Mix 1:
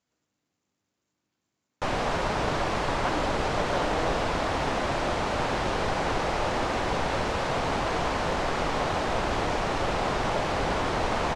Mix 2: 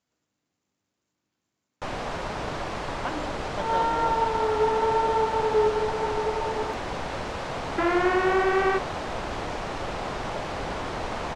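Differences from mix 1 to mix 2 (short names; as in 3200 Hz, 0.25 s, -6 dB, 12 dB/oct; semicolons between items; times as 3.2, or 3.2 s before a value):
first sound -4.5 dB; second sound: unmuted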